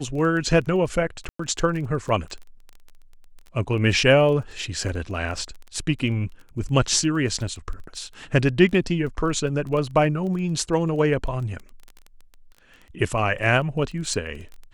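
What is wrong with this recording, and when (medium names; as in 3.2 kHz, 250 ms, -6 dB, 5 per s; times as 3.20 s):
crackle 17 per s -31 dBFS
1.29–1.39 s: dropout 104 ms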